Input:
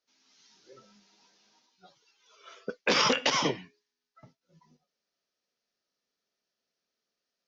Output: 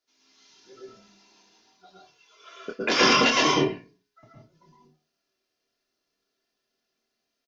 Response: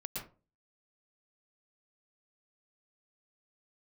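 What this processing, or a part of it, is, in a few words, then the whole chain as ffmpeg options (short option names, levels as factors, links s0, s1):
microphone above a desk: -filter_complex "[0:a]aecho=1:1:2.9:0.51,asplit=2[s0][s1];[s1]adelay=26,volume=0.447[s2];[s0][s2]amix=inputs=2:normalize=0[s3];[1:a]atrim=start_sample=2205[s4];[s3][s4]afir=irnorm=-1:irlink=0,volume=1.68"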